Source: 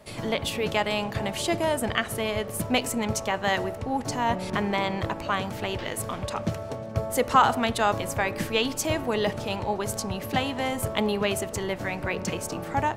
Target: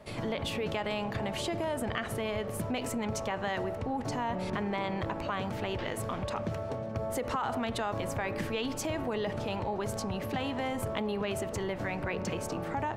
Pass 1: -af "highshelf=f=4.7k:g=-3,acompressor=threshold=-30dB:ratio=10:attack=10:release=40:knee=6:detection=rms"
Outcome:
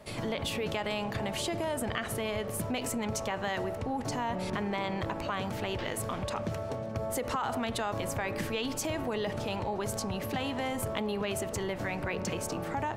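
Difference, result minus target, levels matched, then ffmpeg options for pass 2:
8000 Hz band +4.0 dB
-af "highshelf=f=4.7k:g=-10.5,acompressor=threshold=-30dB:ratio=10:attack=10:release=40:knee=6:detection=rms"

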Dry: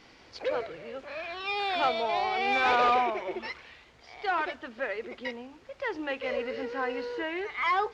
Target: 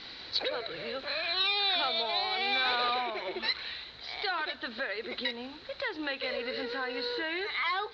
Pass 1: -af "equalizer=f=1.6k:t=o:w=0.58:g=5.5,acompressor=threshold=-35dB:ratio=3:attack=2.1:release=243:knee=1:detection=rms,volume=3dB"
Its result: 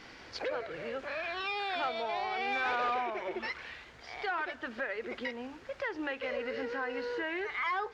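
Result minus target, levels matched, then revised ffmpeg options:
4000 Hz band -9.5 dB
-af "equalizer=f=1.6k:t=o:w=0.58:g=5.5,acompressor=threshold=-35dB:ratio=3:attack=2.1:release=243:knee=1:detection=rms,lowpass=f=4k:t=q:w=14,volume=3dB"

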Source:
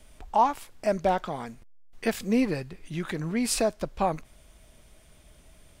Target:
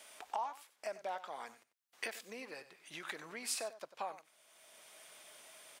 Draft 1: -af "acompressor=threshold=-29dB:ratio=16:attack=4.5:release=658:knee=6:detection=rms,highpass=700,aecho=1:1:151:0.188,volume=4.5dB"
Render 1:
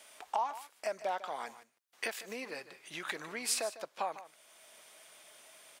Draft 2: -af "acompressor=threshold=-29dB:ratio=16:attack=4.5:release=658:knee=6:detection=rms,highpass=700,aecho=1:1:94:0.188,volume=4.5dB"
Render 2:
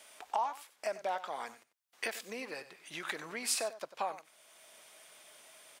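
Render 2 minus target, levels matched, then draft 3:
compressor: peak gain reduction -5.5 dB
-af "acompressor=threshold=-35dB:ratio=16:attack=4.5:release=658:knee=6:detection=rms,highpass=700,aecho=1:1:94:0.188,volume=4.5dB"

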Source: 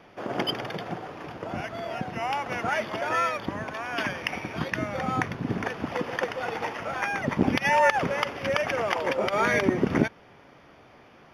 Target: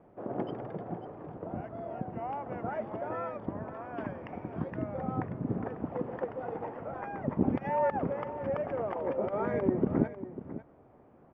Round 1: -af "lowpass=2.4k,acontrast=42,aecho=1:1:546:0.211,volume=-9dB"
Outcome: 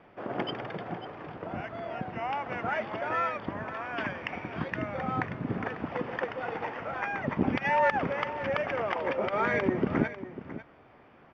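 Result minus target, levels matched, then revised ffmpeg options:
2000 Hz band +11.0 dB
-af "lowpass=720,acontrast=42,aecho=1:1:546:0.211,volume=-9dB"

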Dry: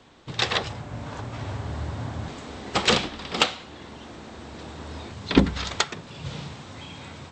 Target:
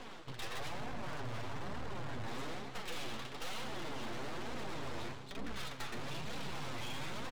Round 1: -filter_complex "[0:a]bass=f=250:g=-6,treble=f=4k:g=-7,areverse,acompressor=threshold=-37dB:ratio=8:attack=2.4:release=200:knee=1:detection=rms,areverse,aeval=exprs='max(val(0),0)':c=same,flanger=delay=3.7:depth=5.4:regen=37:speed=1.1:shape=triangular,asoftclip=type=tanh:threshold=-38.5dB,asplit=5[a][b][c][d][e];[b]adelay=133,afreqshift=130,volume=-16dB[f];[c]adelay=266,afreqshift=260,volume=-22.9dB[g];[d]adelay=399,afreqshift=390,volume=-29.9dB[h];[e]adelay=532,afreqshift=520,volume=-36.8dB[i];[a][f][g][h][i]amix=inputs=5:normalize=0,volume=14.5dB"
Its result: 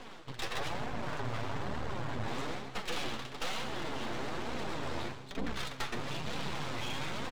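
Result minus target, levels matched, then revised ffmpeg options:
soft clip: distortion -11 dB
-filter_complex "[0:a]bass=f=250:g=-6,treble=f=4k:g=-7,areverse,acompressor=threshold=-37dB:ratio=8:attack=2.4:release=200:knee=1:detection=rms,areverse,aeval=exprs='max(val(0),0)':c=same,flanger=delay=3.7:depth=5.4:regen=37:speed=1.1:shape=triangular,asoftclip=type=tanh:threshold=-48.5dB,asplit=5[a][b][c][d][e];[b]adelay=133,afreqshift=130,volume=-16dB[f];[c]adelay=266,afreqshift=260,volume=-22.9dB[g];[d]adelay=399,afreqshift=390,volume=-29.9dB[h];[e]adelay=532,afreqshift=520,volume=-36.8dB[i];[a][f][g][h][i]amix=inputs=5:normalize=0,volume=14.5dB"

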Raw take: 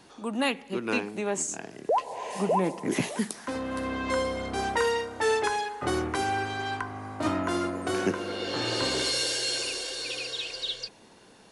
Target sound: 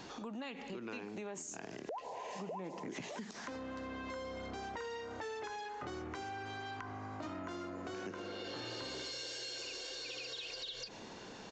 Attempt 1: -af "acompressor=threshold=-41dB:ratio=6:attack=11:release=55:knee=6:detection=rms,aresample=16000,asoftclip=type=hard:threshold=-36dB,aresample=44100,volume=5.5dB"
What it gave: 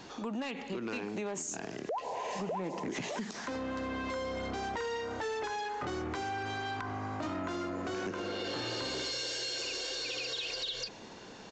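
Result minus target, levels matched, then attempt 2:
compressor: peak gain reduction -7.5 dB
-af "acompressor=threshold=-50dB:ratio=6:attack=11:release=55:knee=6:detection=rms,aresample=16000,asoftclip=type=hard:threshold=-36dB,aresample=44100,volume=5.5dB"

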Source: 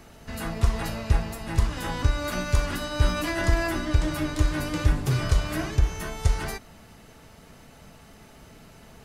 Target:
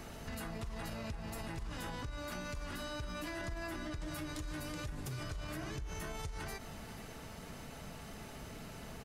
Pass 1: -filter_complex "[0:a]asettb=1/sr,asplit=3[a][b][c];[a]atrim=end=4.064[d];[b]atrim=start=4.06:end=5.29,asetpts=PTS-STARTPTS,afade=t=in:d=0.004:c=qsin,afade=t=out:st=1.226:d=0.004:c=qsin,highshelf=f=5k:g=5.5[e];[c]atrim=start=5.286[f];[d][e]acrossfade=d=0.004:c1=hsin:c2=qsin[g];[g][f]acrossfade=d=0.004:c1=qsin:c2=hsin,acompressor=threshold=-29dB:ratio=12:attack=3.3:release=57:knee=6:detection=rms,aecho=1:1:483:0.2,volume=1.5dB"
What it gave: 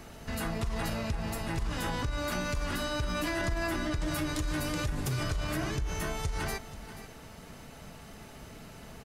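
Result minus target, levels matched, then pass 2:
compressor: peak gain reduction -10 dB
-filter_complex "[0:a]asettb=1/sr,asplit=3[a][b][c];[a]atrim=end=4.064[d];[b]atrim=start=4.06:end=5.29,asetpts=PTS-STARTPTS,afade=t=in:d=0.004:c=qsin,afade=t=out:st=1.226:d=0.004:c=qsin,highshelf=f=5k:g=5.5[e];[c]atrim=start=5.286[f];[d][e]acrossfade=d=0.004:c1=hsin:c2=qsin[g];[g][f]acrossfade=d=0.004:c1=qsin:c2=hsin,acompressor=threshold=-40dB:ratio=12:attack=3.3:release=57:knee=6:detection=rms,aecho=1:1:483:0.2,volume=1.5dB"

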